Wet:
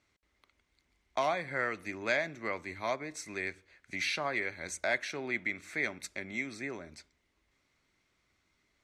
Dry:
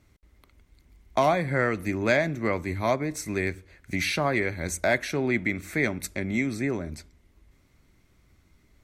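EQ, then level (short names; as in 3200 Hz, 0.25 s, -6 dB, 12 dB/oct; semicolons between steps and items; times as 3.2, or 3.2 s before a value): air absorption 84 m; tilt +2 dB/oct; low shelf 300 Hz -8 dB; -6.0 dB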